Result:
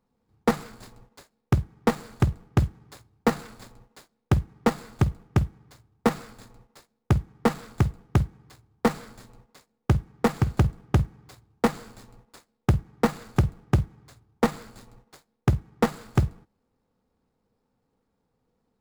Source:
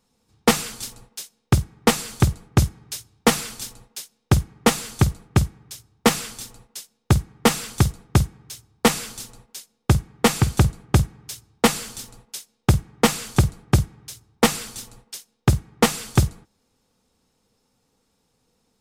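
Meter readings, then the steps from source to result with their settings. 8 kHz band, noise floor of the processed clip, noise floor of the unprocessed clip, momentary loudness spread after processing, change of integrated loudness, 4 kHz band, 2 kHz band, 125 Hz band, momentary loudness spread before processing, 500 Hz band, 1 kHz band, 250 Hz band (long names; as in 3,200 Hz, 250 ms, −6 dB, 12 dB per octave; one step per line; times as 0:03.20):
−18.0 dB, −76 dBFS, −70 dBFS, 10 LU, −5.0 dB, −15.0 dB, −8.0 dB, −4.0 dB, 18 LU, −4.0 dB, −5.0 dB, −4.0 dB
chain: running median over 15 samples
level −4 dB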